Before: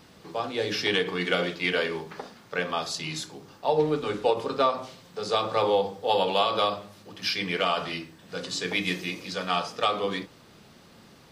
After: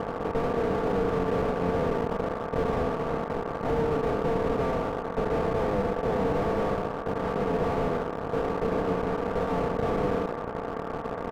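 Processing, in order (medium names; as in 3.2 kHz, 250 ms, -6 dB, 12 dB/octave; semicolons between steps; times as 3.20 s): spectral levelling over time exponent 0.2; bass shelf 240 Hz +2.5 dB; comb 4.4 ms, depth 52%; feedback echo behind a band-pass 79 ms, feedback 71%, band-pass 440 Hz, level -20 dB; companded quantiser 2-bit; peak limiter -10.5 dBFS, peak gain reduction 10.5 dB; low-pass 1.4 kHz 24 dB/octave; slew-rate limiter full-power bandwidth 46 Hz; trim -2.5 dB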